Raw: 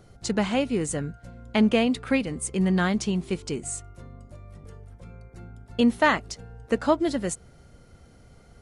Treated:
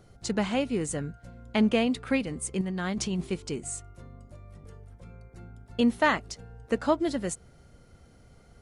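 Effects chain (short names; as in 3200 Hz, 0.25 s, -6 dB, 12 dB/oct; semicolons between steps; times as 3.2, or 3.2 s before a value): 2.61–3.27 negative-ratio compressor -27 dBFS, ratio -1; gain -3 dB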